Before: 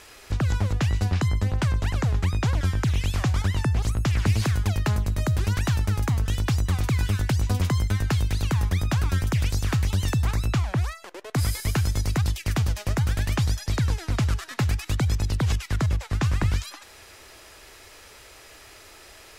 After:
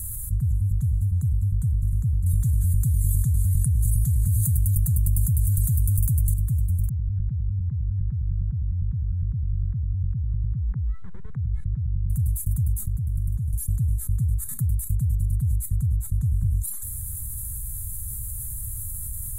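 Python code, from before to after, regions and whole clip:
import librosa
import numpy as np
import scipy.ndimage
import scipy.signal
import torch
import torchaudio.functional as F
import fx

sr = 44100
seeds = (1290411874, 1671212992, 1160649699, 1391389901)

y = fx.chain(x, sr, fx.high_shelf(hz=2000.0, db=12.0),
    fx.env_flatten(amount_pct=100), at=(2.26, 6.34))
y = fx.chain(y, sr, fx.lowpass(hz=2600.0, slope=24),
    fx.over_compress(threshold_db=-33.0, ratio=-1.0), at=(6.89, 12.1))
y = fx.chain(y, sr, fx.high_shelf(hz=5200.0, db=-7.0),
    fx.over_compress(threshold_db=-33.0, ratio=-1.0), at=(12.82, 13.53))
y = scipy.signal.sosfilt(scipy.signal.cheby2(4, 40, [290.0, 5600.0], 'bandstop', fs=sr, output='sos'), y)
y = fx.peak_eq(y, sr, hz=3500.0, db=4.0, octaves=0.21)
y = fx.env_flatten(y, sr, amount_pct=70)
y = y * 10.0 ** (-4.0 / 20.0)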